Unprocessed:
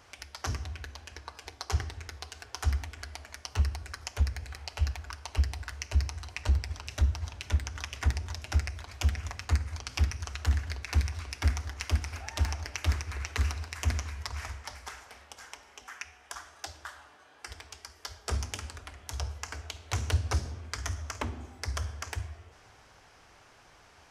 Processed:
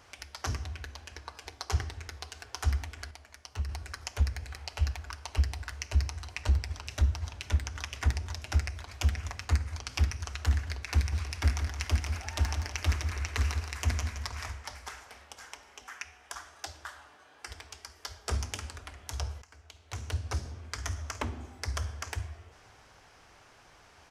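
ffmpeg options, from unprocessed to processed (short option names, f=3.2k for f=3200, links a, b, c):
-filter_complex "[0:a]asplit=3[a][b][c];[a]afade=t=out:st=11.11:d=0.02[d];[b]aecho=1:1:169|338|507|676:0.398|0.131|0.0434|0.0143,afade=t=in:st=11.11:d=0.02,afade=t=out:st=14.5:d=0.02[e];[c]afade=t=in:st=14.5:d=0.02[f];[d][e][f]amix=inputs=3:normalize=0,asplit=4[g][h][i][j];[g]atrim=end=3.112[k];[h]atrim=start=3.108:end=3.692,asetpts=PTS-STARTPTS,volume=-7dB[l];[i]atrim=start=3.688:end=19.42,asetpts=PTS-STARTPTS,afade=t=out:st=15.728:d=0.004:c=hsin:silence=0.105925[m];[j]atrim=start=19.42,asetpts=PTS-STARTPTS,afade=t=in:d=1.59:silence=0.105925[n];[k][l]acrossfade=d=0.004:c1=hsin:c2=hsin[o];[m][n]concat=n=2:v=0:a=1[p];[o][p]acrossfade=d=0.004:c1=hsin:c2=hsin"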